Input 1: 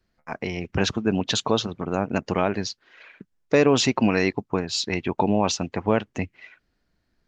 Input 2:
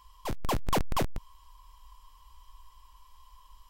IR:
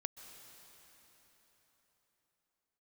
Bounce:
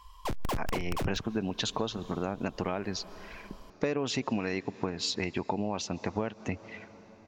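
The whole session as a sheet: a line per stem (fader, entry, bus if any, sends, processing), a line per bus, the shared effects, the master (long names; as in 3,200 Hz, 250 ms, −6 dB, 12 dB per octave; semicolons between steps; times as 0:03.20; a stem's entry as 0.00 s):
−2.5 dB, 0.30 s, send −10.5 dB, no processing
+2.5 dB, 0.00 s, send −17 dB, downward compressor 16 to 1, threshold −29 dBFS, peak gain reduction 6 dB; wrap-around overflow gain 27 dB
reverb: on, RT60 4.3 s, pre-delay 118 ms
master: high-shelf EQ 10,000 Hz −7.5 dB; downward compressor 5 to 1, threshold −28 dBFS, peak gain reduction 13 dB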